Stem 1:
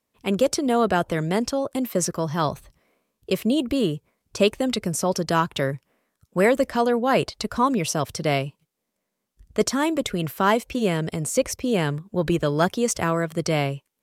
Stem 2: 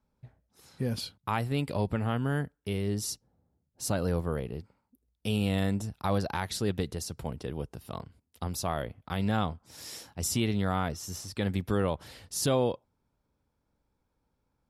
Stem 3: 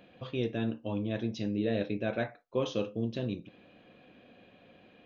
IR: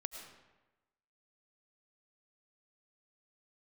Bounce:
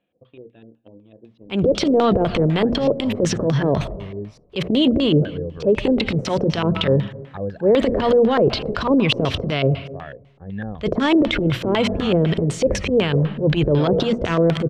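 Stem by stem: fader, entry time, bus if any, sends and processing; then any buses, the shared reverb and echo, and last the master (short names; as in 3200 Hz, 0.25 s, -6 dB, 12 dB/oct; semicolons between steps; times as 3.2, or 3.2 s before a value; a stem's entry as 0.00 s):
+1.0 dB, 1.25 s, send -4 dB, low shelf 170 Hz +6.5 dB; transient shaper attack -11 dB, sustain +10 dB
-5.0 dB, 1.30 s, no send, bell 1700 Hz +15 dB 0.26 oct; spectral expander 1.5:1
-18.0 dB, 0.00 s, send -20 dB, high shelf 2600 Hz -10.5 dB; transient shaper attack +8 dB, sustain 0 dB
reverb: on, RT60 1.1 s, pre-delay 65 ms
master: notches 60/120/180/240 Hz; LFO low-pass square 4 Hz 490–3300 Hz; limiter -8 dBFS, peak gain reduction 9 dB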